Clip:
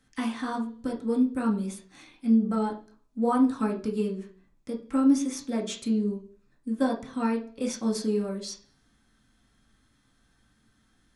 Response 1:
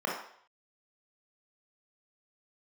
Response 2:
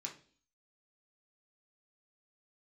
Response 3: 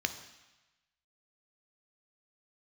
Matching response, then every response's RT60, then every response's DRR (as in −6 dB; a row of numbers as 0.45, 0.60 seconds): 2; 0.60, 0.45, 1.1 seconds; −2.0, −1.0, 7.5 decibels